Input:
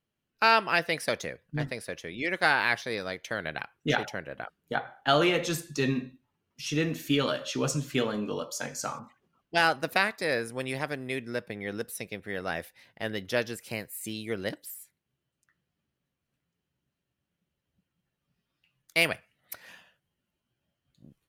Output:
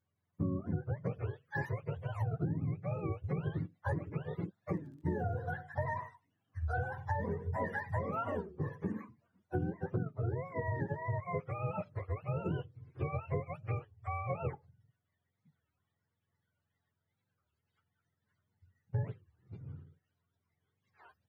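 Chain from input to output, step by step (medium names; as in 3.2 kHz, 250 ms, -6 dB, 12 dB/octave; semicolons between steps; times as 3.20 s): spectrum inverted on a logarithmic axis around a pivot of 500 Hz; compression 16:1, threshold -31 dBFS, peak gain reduction 17 dB; 4.74–5.34 s: crackle 58 per s -> 14 per s -60 dBFS; warped record 33 1/3 rpm, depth 250 cents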